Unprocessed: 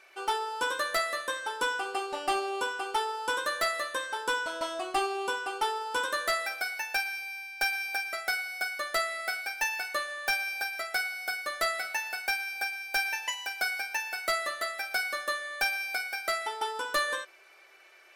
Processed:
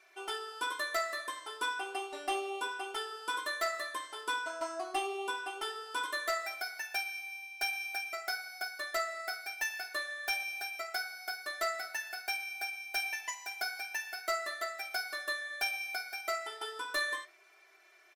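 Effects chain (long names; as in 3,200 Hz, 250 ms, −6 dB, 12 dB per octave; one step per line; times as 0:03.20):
low-shelf EQ 190 Hz −10.5 dB
comb filter 2.9 ms, depth 93%
flanger 0.34 Hz, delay 7.2 ms, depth 7.3 ms, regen −80%
level −3 dB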